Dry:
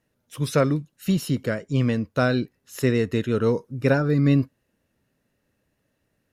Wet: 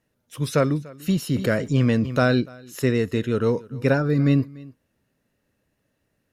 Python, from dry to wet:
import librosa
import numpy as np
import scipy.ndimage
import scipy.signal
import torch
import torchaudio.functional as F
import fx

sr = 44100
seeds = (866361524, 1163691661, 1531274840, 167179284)

y = x + 10.0 ** (-22.0 / 20.0) * np.pad(x, (int(292 * sr / 1000.0), 0))[:len(x)]
y = fx.env_flatten(y, sr, amount_pct=50, at=(1.34, 2.4), fade=0.02)